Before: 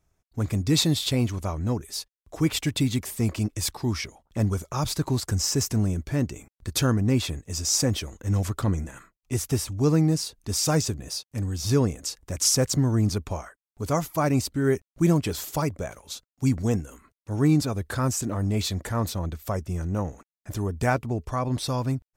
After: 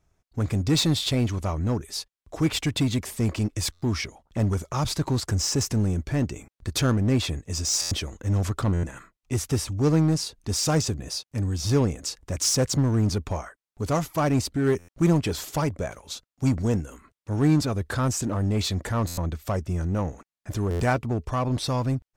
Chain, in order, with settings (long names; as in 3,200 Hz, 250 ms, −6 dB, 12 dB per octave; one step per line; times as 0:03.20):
high-shelf EQ 11,000 Hz −11.5 dB
in parallel at −9 dB: wave folding −25.5 dBFS
on the sum: buffer that repeats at 0:03.72/0:07.81/0:08.73/0:14.78/0:19.07/0:20.70, samples 512, times 8